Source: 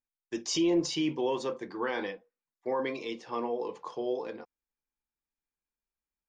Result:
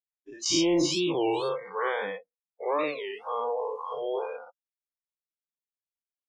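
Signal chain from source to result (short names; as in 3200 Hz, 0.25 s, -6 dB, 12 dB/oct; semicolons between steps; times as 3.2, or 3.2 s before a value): spectral dilation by 0.12 s; spectral noise reduction 29 dB; 1.56–3.58 high shelf 3600 Hz -7.5 dB; record warp 33 1/3 rpm, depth 250 cents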